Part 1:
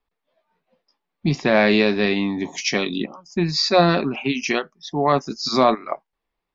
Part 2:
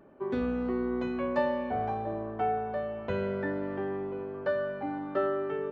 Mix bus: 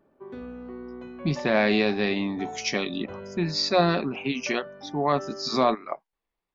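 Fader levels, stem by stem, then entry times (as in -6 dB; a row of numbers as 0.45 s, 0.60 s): -5.5 dB, -8.5 dB; 0.00 s, 0.00 s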